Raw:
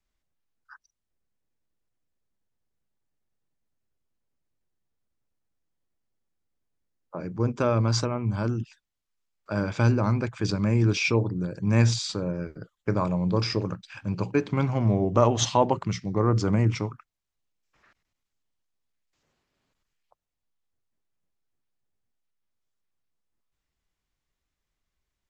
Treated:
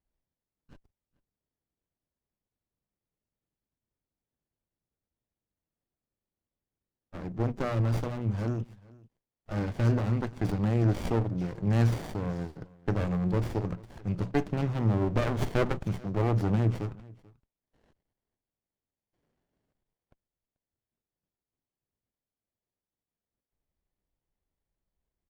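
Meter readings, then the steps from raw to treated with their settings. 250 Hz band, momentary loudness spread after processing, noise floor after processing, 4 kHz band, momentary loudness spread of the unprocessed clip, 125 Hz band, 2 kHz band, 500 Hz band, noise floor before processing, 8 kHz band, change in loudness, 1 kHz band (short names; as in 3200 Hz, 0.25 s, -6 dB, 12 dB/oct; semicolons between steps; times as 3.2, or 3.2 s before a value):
-4.0 dB, 11 LU, under -85 dBFS, -13.5 dB, 12 LU, -3.0 dB, -6.5 dB, -5.5 dB, -84 dBFS, under -15 dB, -4.0 dB, -7.5 dB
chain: echo 0.437 s -23.5 dB; running maximum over 33 samples; gain -2 dB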